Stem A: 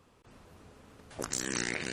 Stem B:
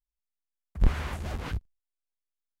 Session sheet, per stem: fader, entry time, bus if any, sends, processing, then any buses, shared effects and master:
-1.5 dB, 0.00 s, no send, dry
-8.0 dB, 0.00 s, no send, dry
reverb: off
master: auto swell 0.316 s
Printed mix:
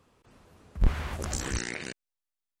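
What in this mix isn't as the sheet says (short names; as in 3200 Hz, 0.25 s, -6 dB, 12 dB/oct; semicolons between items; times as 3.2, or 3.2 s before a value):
stem B -8.0 dB -> -1.0 dB; master: missing auto swell 0.316 s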